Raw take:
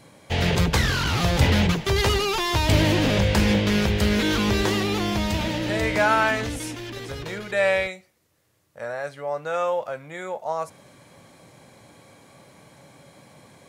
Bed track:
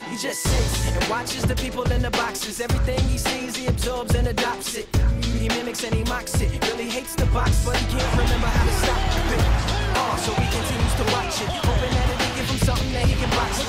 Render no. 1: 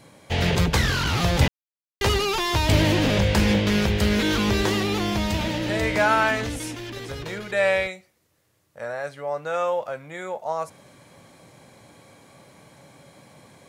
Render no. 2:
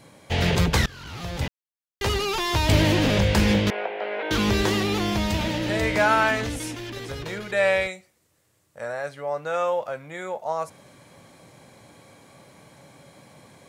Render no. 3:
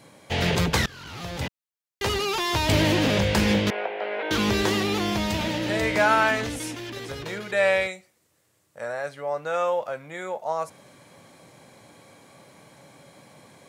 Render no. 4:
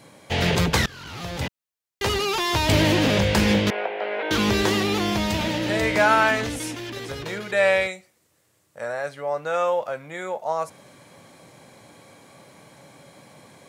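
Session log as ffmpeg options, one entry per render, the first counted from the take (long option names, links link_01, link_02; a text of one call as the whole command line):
ffmpeg -i in.wav -filter_complex "[0:a]asplit=3[link_01][link_02][link_03];[link_01]atrim=end=1.48,asetpts=PTS-STARTPTS,afade=type=out:start_time=1.476:duration=0.004:curve=hsin[link_04];[link_02]atrim=start=1.48:end=2.01,asetpts=PTS-STARTPTS,volume=0[link_05];[link_03]atrim=start=2.01,asetpts=PTS-STARTPTS,afade=type=in:duration=0.004:curve=hsin[link_06];[link_04][link_05][link_06]concat=n=3:v=0:a=1" out.wav
ffmpeg -i in.wav -filter_complex "[0:a]asettb=1/sr,asplit=3[link_01][link_02][link_03];[link_01]atrim=end=3.704[link_04];[link_02]atrim=start=3.7:end=4.31,asetpts=PTS-STARTPTS,afade=type=in:duration=0.004:curve=qsin,afade=type=out:start_time=0.606:duration=0.004:curve=qsin,highpass=frequency=470:width=0.5412,highpass=frequency=470:width=1.3066,equalizer=frequency=710:width_type=q:width=4:gain=8,equalizer=frequency=1200:width_type=q:width=4:gain=-6,equalizer=frequency=1800:width_type=q:width=4:gain=-5,lowpass=frequency=2200:width=0.5412,lowpass=frequency=2200:width=1.3066[link_05];[link_03]atrim=start=4.306[link_06];[link_04][link_05]acrossfade=duration=0.004:curve1=hsin:curve2=qsin[link_07];[link_07][link_06]acrossfade=duration=0.004:curve1=qsin:curve2=hsin,asettb=1/sr,asplit=3[link_08][link_09][link_10];[link_08]atrim=end=7.814[link_11];[link_09]atrim=start=7.81:end=9.01,asetpts=PTS-STARTPTS,afade=type=in:duration=0.004:curve=qsin,afade=type=out:start_time=1.196:duration=0.004:curve=qsin,equalizer=frequency=8000:width_type=o:width=0.49:gain=5.5[link_12];[link_10]atrim=start=9.006[link_13];[link_11][link_12]acrossfade=duration=0.004:curve1=hsin:curve2=qsin[link_14];[link_14][link_13]acrossfade=duration=0.004:curve1=qsin:curve2=hsin,asplit=2[link_15][link_16];[link_15]atrim=end=0.86,asetpts=PTS-STARTPTS,afade=type=out:start_time=0.856:duration=0.004:curve=hsin:silence=0.0707946[link_17];[link_16]atrim=start=0.86,asetpts=PTS-STARTPTS,afade=type=in:duration=1.83:silence=0.0707946[link_18];[link_17][link_18]concat=n=2:v=0:a=1" out.wav
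ffmpeg -i in.wav -af "highpass=frequency=120:poles=1" out.wav
ffmpeg -i in.wav -af "volume=2dB" out.wav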